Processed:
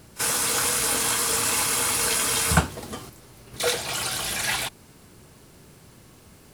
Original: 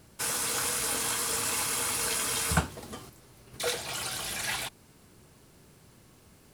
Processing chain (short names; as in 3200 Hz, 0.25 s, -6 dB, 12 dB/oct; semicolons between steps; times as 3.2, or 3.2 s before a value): pre-echo 35 ms -19 dB; gain +6.5 dB